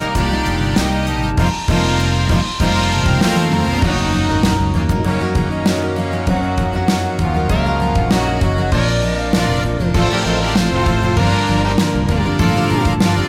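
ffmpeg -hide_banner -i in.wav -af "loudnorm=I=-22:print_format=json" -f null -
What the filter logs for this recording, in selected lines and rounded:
"input_i" : "-16.1",
"input_tp" : "-4.5",
"input_lra" : "1.7",
"input_thresh" : "-26.1",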